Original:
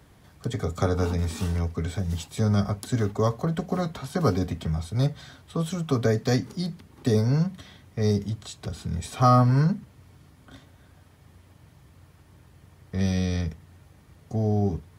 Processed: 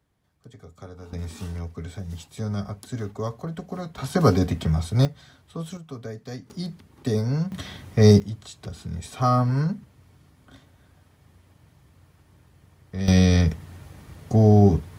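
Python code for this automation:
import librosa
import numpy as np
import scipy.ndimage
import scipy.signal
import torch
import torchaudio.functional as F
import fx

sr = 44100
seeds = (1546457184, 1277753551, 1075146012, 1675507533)

y = fx.gain(x, sr, db=fx.steps((0.0, -17.5), (1.13, -6.0), (3.98, 5.0), (5.05, -5.5), (5.77, -13.0), (6.5, -2.0), (7.52, 9.5), (8.2, -2.5), (13.08, 9.0)))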